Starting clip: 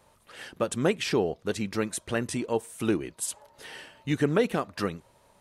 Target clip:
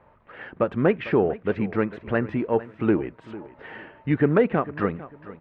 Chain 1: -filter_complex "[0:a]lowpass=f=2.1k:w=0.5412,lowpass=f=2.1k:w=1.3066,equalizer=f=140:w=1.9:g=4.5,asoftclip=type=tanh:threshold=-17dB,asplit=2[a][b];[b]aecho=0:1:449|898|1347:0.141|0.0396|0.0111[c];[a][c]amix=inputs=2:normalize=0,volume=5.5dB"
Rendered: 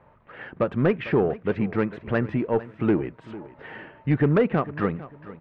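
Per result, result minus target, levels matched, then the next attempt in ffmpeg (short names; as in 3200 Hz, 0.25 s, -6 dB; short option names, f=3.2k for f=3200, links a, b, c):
soft clip: distortion +11 dB; 125 Hz band +3.0 dB
-filter_complex "[0:a]lowpass=f=2.1k:w=0.5412,lowpass=f=2.1k:w=1.3066,equalizer=f=140:w=1.9:g=4.5,asoftclip=type=tanh:threshold=-10.5dB,asplit=2[a][b];[b]aecho=0:1:449|898|1347:0.141|0.0396|0.0111[c];[a][c]amix=inputs=2:normalize=0,volume=5.5dB"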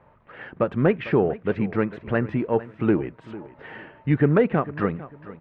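125 Hz band +3.0 dB
-filter_complex "[0:a]lowpass=f=2.1k:w=0.5412,lowpass=f=2.1k:w=1.3066,asoftclip=type=tanh:threshold=-10.5dB,asplit=2[a][b];[b]aecho=0:1:449|898|1347:0.141|0.0396|0.0111[c];[a][c]amix=inputs=2:normalize=0,volume=5.5dB"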